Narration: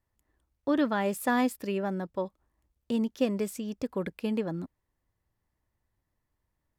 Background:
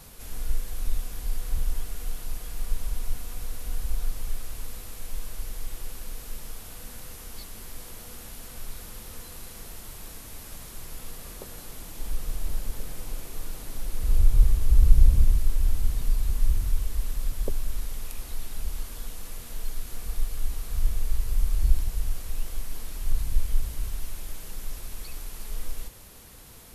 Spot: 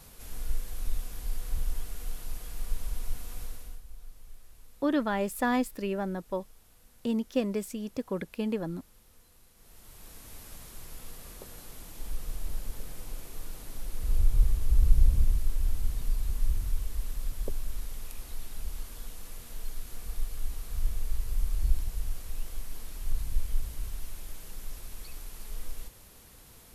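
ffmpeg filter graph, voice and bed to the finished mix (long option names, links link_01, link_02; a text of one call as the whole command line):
ffmpeg -i stem1.wav -i stem2.wav -filter_complex "[0:a]adelay=4150,volume=-1dB[link_01];[1:a]volume=9.5dB,afade=type=out:start_time=3.41:duration=0.41:silence=0.188365,afade=type=in:start_time=9.56:duration=0.75:silence=0.211349[link_02];[link_01][link_02]amix=inputs=2:normalize=0" out.wav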